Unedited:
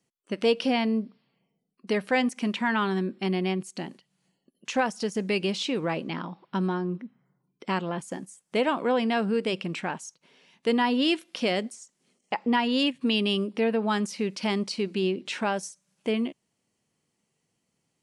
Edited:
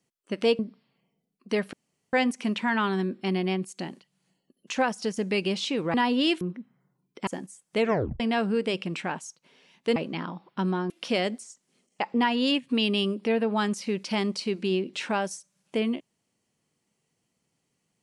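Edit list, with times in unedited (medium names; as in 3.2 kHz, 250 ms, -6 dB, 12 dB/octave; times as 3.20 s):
0.59–0.97 s: delete
2.11 s: insert room tone 0.40 s
5.92–6.86 s: swap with 10.75–11.22 s
7.72–8.06 s: delete
8.58 s: tape stop 0.41 s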